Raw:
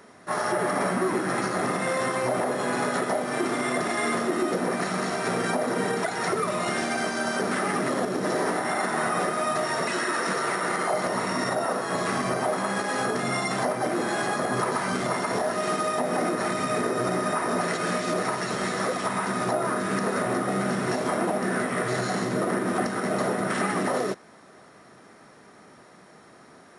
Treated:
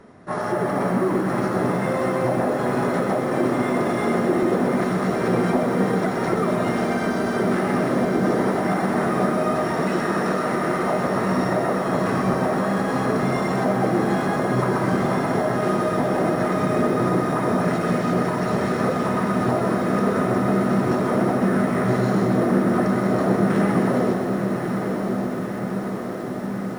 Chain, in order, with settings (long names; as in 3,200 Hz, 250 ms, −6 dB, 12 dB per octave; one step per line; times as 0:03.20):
spectral tilt −3 dB per octave
feedback delay with all-pass diffusion 1,081 ms, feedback 72%, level −6.5 dB
feedback echo at a low word length 126 ms, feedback 80%, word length 7 bits, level −11 dB